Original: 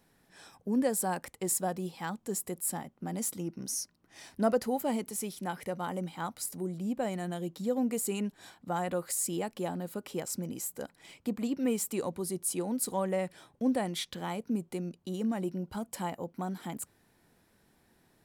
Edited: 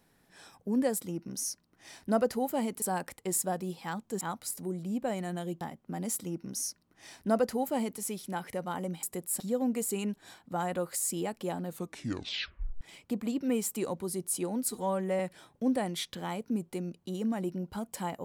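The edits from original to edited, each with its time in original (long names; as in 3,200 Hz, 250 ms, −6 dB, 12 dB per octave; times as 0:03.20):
0:02.37–0:02.74: swap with 0:06.16–0:07.56
0:03.29–0:05.13: duplicate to 0:00.98
0:09.83: tape stop 1.14 s
0:12.86–0:13.19: time-stretch 1.5×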